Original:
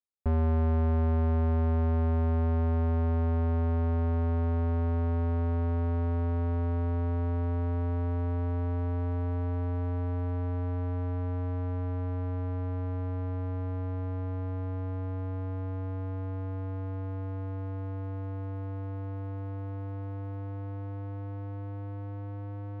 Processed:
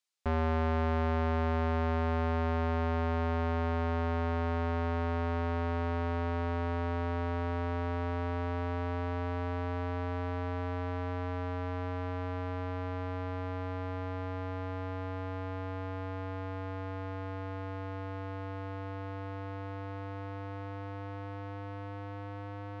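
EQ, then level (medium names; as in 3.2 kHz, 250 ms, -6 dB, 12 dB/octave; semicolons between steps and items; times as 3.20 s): distance through air 95 m; tilt EQ +4.5 dB/octave; bass shelf 77 Hz +8.5 dB; +6.0 dB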